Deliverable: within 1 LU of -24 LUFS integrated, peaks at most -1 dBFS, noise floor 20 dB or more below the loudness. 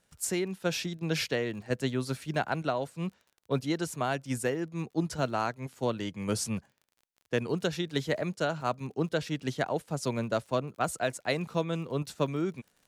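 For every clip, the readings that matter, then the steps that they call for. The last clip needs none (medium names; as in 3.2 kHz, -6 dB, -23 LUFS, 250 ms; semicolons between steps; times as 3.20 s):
tick rate 38 per s; loudness -32.0 LUFS; peak level -14.5 dBFS; loudness target -24.0 LUFS
-> de-click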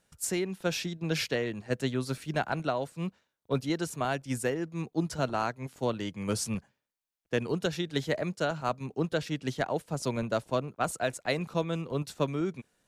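tick rate 0.078 per s; loudness -32.5 LUFS; peak level -14.5 dBFS; loudness target -24.0 LUFS
-> trim +8.5 dB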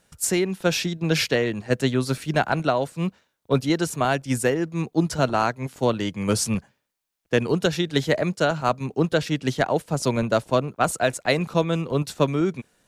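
loudness -24.0 LUFS; peak level -6.0 dBFS; noise floor -73 dBFS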